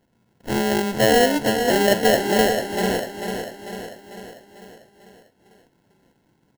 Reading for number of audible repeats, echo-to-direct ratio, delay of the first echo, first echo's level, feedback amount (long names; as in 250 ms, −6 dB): 6, −5.5 dB, 446 ms, −7.0 dB, 54%